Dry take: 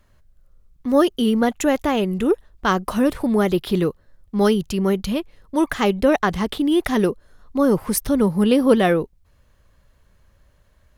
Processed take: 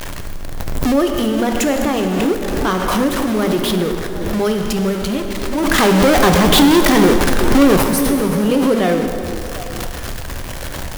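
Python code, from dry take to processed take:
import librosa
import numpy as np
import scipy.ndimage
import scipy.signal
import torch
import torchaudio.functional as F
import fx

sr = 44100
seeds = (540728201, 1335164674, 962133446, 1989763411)

p1 = x + 0.5 * 10.0 ** (-18.0 / 20.0) * np.sign(x)
p2 = fx.hum_notches(p1, sr, base_hz=50, count=5)
p3 = fx.leveller(p2, sr, passes=3, at=(5.78, 7.84))
p4 = p3 + fx.echo_stepped(p3, sr, ms=375, hz=290.0, octaves=1.4, feedback_pct=70, wet_db=-9.0, dry=0)
p5 = fx.rev_plate(p4, sr, seeds[0], rt60_s=2.6, hf_ratio=0.8, predelay_ms=0, drr_db=4.0)
p6 = fx.pre_swell(p5, sr, db_per_s=23.0)
y = p6 * 10.0 ** (-3.5 / 20.0)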